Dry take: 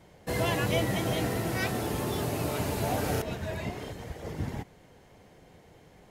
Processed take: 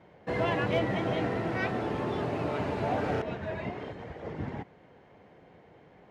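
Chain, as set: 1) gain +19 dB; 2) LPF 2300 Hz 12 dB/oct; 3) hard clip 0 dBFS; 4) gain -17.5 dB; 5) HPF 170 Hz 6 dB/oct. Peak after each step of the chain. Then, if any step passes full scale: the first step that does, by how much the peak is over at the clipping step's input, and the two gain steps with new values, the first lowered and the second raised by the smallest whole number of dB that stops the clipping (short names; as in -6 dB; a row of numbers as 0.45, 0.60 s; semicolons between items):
+5.5, +4.5, 0.0, -17.5, -16.5 dBFS; step 1, 4.5 dB; step 1 +14 dB, step 4 -12.5 dB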